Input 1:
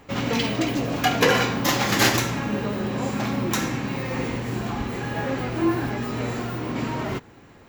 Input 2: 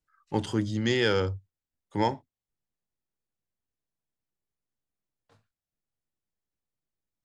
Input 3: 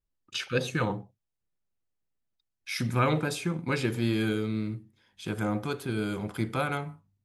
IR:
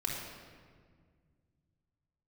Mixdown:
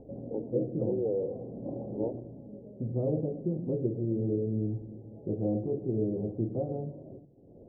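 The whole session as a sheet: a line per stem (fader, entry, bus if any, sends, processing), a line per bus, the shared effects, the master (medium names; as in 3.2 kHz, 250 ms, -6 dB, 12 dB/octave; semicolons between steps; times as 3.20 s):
-7.0 dB, 0.00 s, no send, bass shelf 380 Hz -5.5 dB; upward compressor, threshold -29 dBFS; auto duck -10 dB, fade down 0.90 s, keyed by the third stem
-1.5 dB, 0.00 s, no send, high-pass 370 Hz 12 dB/octave
+3.0 dB, 0.00 s, send -14.5 dB, Chebyshev low-pass 1.7 kHz, order 6; bass shelf 490 Hz -6.5 dB; gain riding within 3 dB 0.5 s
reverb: on, RT60 1.8 s, pre-delay 3 ms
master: steep low-pass 620 Hz 48 dB/octave; de-hum 46.93 Hz, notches 7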